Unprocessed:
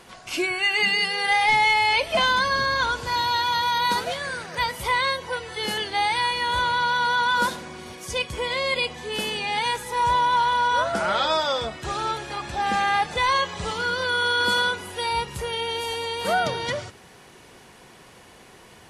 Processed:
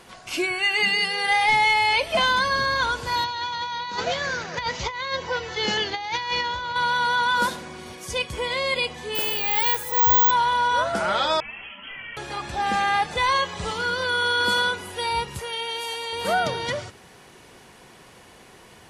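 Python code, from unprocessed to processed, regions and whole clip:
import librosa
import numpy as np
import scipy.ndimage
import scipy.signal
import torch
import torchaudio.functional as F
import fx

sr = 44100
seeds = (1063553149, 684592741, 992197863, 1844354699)

y = fx.chain(x, sr, fx.over_compress(threshold_db=-26.0, ratio=-0.5),
    fx.resample_bad(factor=3, down='none', up='filtered'), at=(3.24, 6.76))
y = fx.chain(y, sr, fx.peak_eq(hz=200.0, db=-13.5, octaves=0.39),
    fx.resample_bad(factor=2, down='none', up='zero_stuff'), at=(9.15, 10.31))
y = fx.chain(y, sr, fx.overload_stage(gain_db=33.0),
    fx.freq_invert(carrier_hz=3200),
    fx.ensemble(), at=(11.4, 12.17))
y = fx.chain(y, sr, fx.highpass(hz=140.0, slope=6),
    fx.low_shelf(hz=460.0, db=-9.5), at=(15.39, 16.13))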